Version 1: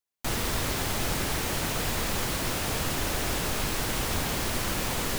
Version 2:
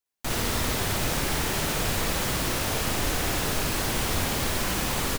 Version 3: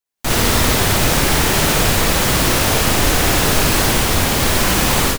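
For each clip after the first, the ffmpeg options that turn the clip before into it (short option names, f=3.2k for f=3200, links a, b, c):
-af "aecho=1:1:58.31|279.9:0.794|0.282"
-af "dynaudnorm=f=150:g=3:m=14dB"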